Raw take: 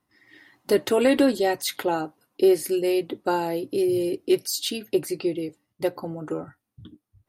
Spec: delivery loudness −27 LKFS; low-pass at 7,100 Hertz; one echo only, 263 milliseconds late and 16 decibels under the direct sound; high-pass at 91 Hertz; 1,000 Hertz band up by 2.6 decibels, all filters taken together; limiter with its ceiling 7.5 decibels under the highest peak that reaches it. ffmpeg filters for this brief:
ffmpeg -i in.wav -af "highpass=91,lowpass=7100,equalizer=frequency=1000:width_type=o:gain=3.5,alimiter=limit=-16dB:level=0:latency=1,aecho=1:1:263:0.158" out.wav

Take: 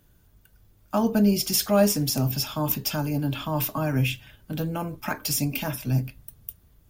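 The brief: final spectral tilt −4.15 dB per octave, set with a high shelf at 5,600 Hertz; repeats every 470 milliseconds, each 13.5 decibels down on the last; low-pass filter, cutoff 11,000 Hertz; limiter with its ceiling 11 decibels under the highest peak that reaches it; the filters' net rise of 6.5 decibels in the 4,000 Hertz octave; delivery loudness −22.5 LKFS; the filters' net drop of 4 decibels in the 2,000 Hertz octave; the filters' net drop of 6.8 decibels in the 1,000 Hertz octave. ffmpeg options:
ffmpeg -i in.wav -af "lowpass=11000,equalizer=frequency=1000:width_type=o:gain=-7.5,equalizer=frequency=2000:width_type=o:gain=-8.5,equalizer=frequency=4000:width_type=o:gain=7,highshelf=frequency=5600:gain=8,alimiter=limit=-16dB:level=0:latency=1,aecho=1:1:470|940:0.211|0.0444,volume=4dB" out.wav

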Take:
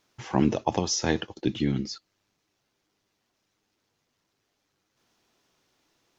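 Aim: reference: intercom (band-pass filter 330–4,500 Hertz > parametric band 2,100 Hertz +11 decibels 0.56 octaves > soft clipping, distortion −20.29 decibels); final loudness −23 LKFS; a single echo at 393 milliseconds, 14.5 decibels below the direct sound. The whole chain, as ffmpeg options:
ffmpeg -i in.wav -af "highpass=330,lowpass=4500,equalizer=frequency=2100:width_type=o:width=0.56:gain=11,aecho=1:1:393:0.188,asoftclip=threshold=-11dB,volume=7.5dB" out.wav

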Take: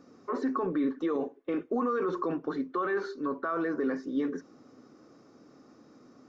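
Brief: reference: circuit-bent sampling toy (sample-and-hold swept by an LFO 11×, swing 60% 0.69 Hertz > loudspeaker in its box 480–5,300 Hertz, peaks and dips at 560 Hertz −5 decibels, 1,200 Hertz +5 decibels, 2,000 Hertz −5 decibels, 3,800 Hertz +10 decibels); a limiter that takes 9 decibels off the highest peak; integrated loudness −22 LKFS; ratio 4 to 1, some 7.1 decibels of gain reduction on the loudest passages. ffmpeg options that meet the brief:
ffmpeg -i in.wav -af "acompressor=threshold=-34dB:ratio=4,alimiter=level_in=9.5dB:limit=-24dB:level=0:latency=1,volume=-9.5dB,acrusher=samples=11:mix=1:aa=0.000001:lfo=1:lforange=6.6:lforate=0.69,highpass=480,equalizer=frequency=560:width_type=q:width=4:gain=-5,equalizer=frequency=1200:width_type=q:width=4:gain=5,equalizer=frequency=2000:width_type=q:width=4:gain=-5,equalizer=frequency=3800:width_type=q:width=4:gain=10,lowpass=frequency=5300:width=0.5412,lowpass=frequency=5300:width=1.3066,volume=22.5dB" out.wav

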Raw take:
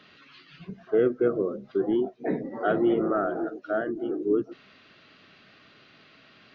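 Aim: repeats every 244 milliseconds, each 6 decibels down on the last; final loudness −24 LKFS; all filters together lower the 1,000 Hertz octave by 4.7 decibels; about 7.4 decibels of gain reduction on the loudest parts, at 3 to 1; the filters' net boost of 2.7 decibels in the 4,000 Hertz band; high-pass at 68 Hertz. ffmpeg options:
ffmpeg -i in.wav -af "highpass=68,equalizer=frequency=1000:width_type=o:gain=-8.5,equalizer=frequency=4000:width_type=o:gain=4.5,acompressor=threshold=-29dB:ratio=3,aecho=1:1:244|488|732|976|1220|1464:0.501|0.251|0.125|0.0626|0.0313|0.0157,volume=8.5dB" out.wav

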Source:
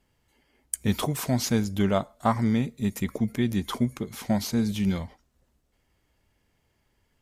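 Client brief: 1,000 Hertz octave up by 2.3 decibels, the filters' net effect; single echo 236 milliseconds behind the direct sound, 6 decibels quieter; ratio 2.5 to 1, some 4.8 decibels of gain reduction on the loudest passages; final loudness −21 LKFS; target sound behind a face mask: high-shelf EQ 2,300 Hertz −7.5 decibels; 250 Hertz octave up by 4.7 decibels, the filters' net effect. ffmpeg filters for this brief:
ffmpeg -i in.wav -af "equalizer=frequency=250:width_type=o:gain=5.5,equalizer=frequency=1000:width_type=o:gain=4,acompressor=threshold=-22dB:ratio=2.5,highshelf=frequency=2300:gain=-7.5,aecho=1:1:236:0.501,volume=5.5dB" out.wav

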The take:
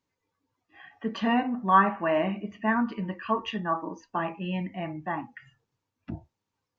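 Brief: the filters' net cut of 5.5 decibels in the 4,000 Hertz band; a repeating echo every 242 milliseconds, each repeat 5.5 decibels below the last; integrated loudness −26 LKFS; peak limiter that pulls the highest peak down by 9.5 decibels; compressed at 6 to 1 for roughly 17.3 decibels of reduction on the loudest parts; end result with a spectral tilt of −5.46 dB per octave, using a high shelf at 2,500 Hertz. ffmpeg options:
ffmpeg -i in.wav -af "highshelf=frequency=2500:gain=-6,equalizer=frequency=4000:width_type=o:gain=-3.5,acompressor=threshold=-34dB:ratio=6,alimiter=level_in=7.5dB:limit=-24dB:level=0:latency=1,volume=-7.5dB,aecho=1:1:242|484|726|968|1210|1452|1694:0.531|0.281|0.149|0.079|0.0419|0.0222|0.0118,volume=14dB" out.wav

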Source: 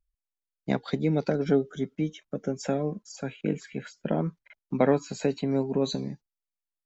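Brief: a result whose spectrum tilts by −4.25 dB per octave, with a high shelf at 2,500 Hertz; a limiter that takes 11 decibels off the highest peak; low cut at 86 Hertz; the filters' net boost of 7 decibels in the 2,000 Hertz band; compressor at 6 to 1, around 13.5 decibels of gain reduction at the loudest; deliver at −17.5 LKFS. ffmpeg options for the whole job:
ffmpeg -i in.wav -af "highpass=86,equalizer=frequency=2000:width_type=o:gain=5,highshelf=frequency=2500:gain=8.5,acompressor=threshold=-31dB:ratio=6,volume=21.5dB,alimiter=limit=-6.5dB:level=0:latency=1" out.wav

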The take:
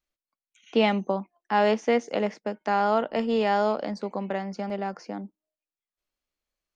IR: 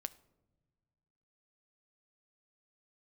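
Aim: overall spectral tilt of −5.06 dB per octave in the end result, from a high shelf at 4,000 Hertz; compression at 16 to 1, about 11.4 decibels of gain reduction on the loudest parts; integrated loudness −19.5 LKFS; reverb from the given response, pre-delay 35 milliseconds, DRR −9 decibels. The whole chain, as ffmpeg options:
-filter_complex "[0:a]highshelf=frequency=4000:gain=-6.5,acompressor=threshold=-28dB:ratio=16,asplit=2[link_01][link_02];[1:a]atrim=start_sample=2205,adelay=35[link_03];[link_02][link_03]afir=irnorm=-1:irlink=0,volume=12dB[link_04];[link_01][link_04]amix=inputs=2:normalize=0,volume=5.5dB"

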